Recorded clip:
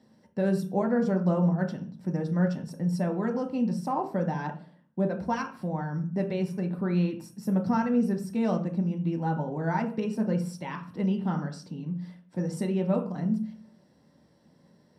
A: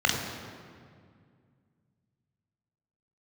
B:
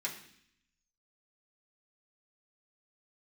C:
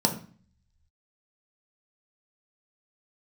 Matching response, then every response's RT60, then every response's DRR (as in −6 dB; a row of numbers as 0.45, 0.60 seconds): C; 2.1, 0.65, 0.40 seconds; −0.5, −5.0, 2.0 decibels